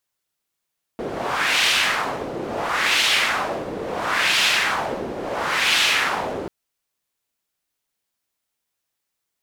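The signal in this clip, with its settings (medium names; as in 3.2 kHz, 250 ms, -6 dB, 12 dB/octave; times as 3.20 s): wind-like swept noise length 5.49 s, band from 400 Hz, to 3 kHz, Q 1.6, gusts 4, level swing 11 dB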